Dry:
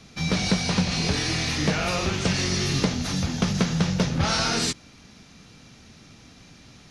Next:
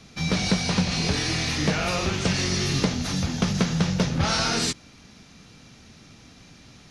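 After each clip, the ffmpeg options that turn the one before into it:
-af anull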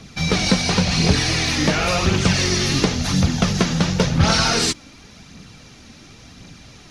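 -af "aphaser=in_gain=1:out_gain=1:delay=3.9:decay=0.37:speed=0.93:type=triangular,volume=5.5dB"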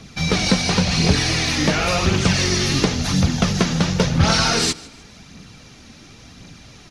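-af "aecho=1:1:152|304|456:0.0841|0.0311|0.0115"

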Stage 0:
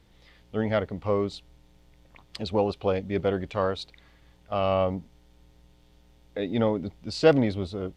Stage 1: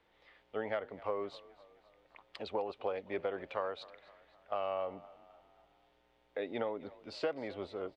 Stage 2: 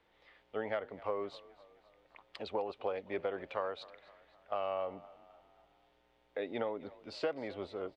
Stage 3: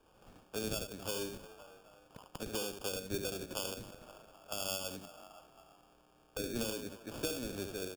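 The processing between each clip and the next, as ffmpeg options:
-filter_complex "[0:a]acrossover=split=380 3100:gain=0.1 1 0.141[a][b][c];[a][b][c]amix=inputs=3:normalize=0,acompressor=threshold=-29dB:ratio=12,asplit=5[d][e][f][g][h];[e]adelay=258,afreqshift=34,volume=-20dB[i];[f]adelay=516,afreqshift=68,volume=-25.7dB[j];[g]adelay=774,afreqshift=102,volume=-31.4dB[k];[h]adelay=1032,afreqshift=136,volume=-37dB[l];[d][i][j][k][l]amix=inputs=5:normalize=0,volume=-2.5dB"
-af anull
-filter_complex "[0:a]aecho=1:1:73:0.473,acrusher=samples=22:mix=1:aa=0.000001,acrossover=split=350|3000[a][b][c];[b]acompressor=threshold=-53dB:ratio=4[d];[a][d][c]amix=inputs=3:normalize=0,volume=4.5dB"

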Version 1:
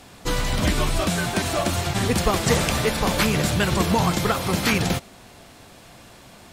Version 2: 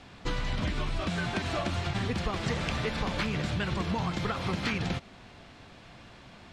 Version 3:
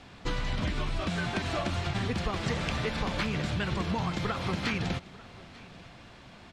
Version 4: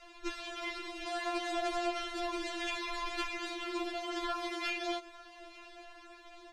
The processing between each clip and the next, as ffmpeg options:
-af "lowpass=3.8k,equalizer=f=540:t=o:w=2:g=-4,acompressor=threshold=-25dB:ratio=6,volume=-2dB"
-af "aecho=1:1:894:0.0891"
-filter_complex "[0:a]acrossover=split=220|1700[a][b][c];[b]asoftclip=type=hard:threshold=-32dB[d];[a][d][c]amix=inputs=3:normalize=0,afftfilt=real='re*4*eq(mod(b,16),0)':imag='im*4*eq(mod(b,16),0)':win_size=2048:overlap=0.75"

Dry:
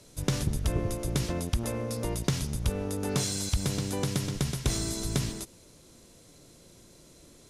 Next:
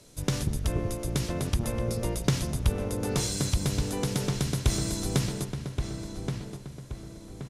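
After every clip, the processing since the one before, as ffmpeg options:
-filter_complex "[0:a]asplit=2[a][b];[b]adelay=1125,lowpass=f=2.4k:p=1,volume=-5dB,asplit=2[c][d];[d]adelay=1125,lowpass=f=2.4k:p=1,volume=0.43,asplit=2[e][f];[f]adelay=1125,lowpass=f=2.4k:p=1,volume=0.43,asplit=2[g][h];[h]adelay=1125,lowpass=f=2.4k:p=1,volume=0.43,asplit=2[i][j];[j]adelay=1125,lowpass=f=2.4k:p=1,volume=0.43[k];[a][c][e][g][i][k]amix=inputs=6:normalize=0"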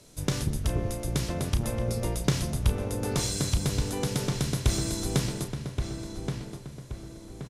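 -filter_complex "[0:a]asplit=2[a][b];[b]adelay=33,volume=-10dB[c];[a][c]amix=inputs=2:normalize=0"

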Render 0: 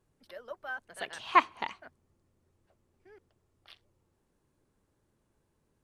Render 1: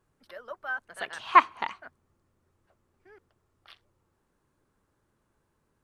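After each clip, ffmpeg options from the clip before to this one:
-af "equalizer=f=1.3k:w=1.2:g=7"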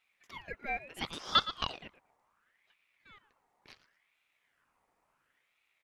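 -af "aecho=1:1:114|228:0.158|0.0285,alimiter=limit=-11dB:level=0:latency=1:release=299,aeval=exprs='val(0)*sin(2*PI*1600*n/s+1600*0.5/0.71*sin(2*PI*0.71*n/s))':c=same"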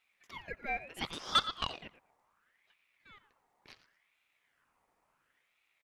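-af "asoftclip=type=tanh:threshold=-15.5dB,aecho=1:1:88:0.0944"

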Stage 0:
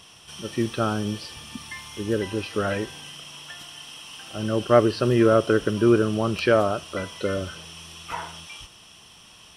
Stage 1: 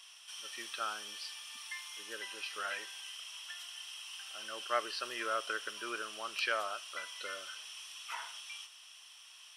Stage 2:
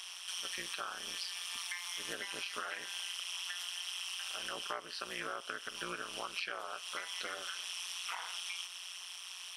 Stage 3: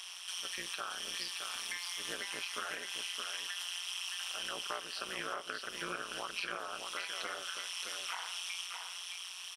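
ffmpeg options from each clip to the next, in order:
-af "highpass=1.4k,volume=-5dB"
-af "acompressor=threshold=-46dB:ratio=12,tremolo=f=180:d=0.947,volume=12.5dB"
-af "aecho=1:1:619:0.531"

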